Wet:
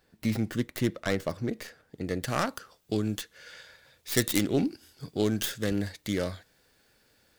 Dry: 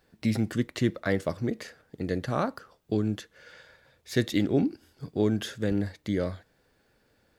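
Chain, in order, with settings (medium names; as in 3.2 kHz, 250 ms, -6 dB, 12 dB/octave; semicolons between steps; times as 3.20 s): tracing distortion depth 0.24 ms; treble shelf 2.2 kHz +3 dB, from 2.23 s +11.5 dB; trim -2 dB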